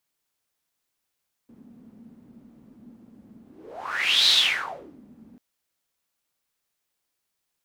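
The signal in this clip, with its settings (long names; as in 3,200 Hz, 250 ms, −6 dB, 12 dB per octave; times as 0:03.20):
pass-by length 3.89 s, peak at 0:02.81, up 0.91 s, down 0.75 s, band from 230 Hz, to 3,900 Hz, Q 7.4, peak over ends 31.5 dB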